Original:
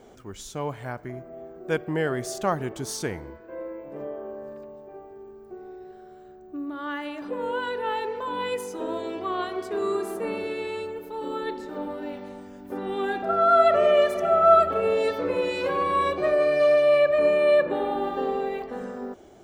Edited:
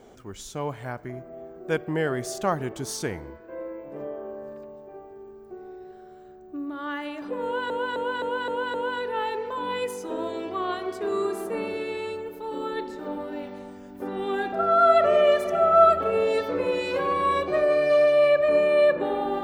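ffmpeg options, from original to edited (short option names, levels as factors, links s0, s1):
-filter_complex "[0:a]asplit=6[s0][s1][s2][s3][s4][s5];[s0]atrim=end=7.702[s6];[s1]atrim=start=7.438:end=7.702[s7];[s2]atrim=start=7.438:end=7.702[s8];[s3]atrim=start=7.438:end=7.702[s9];[s4]atrim=start=7.438:end=7.702[s10];[s5]atrim=start=7.438[s11];[s6][s7]acrossfade=d=0.004:c1=hsin:c2=hsin[s12];[s12][s8]acrossfade=d=0.004:c1=hsin:c2=hsin[s13];[s13][s9]acrossfade=d=0.004:c1=hsin:c2=hsin[s14];[s14][s10]acrossfade=d=0.004:c1=hsin:c2=hsin[s15];[s15][s11]acrossfade=d=0.004:c1=hsin:c2=hsin"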